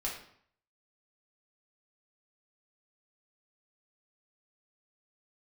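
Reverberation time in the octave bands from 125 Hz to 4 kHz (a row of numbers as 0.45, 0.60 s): 0.70, 0.65, 0.60, 0.65, 0.60, 0.50 s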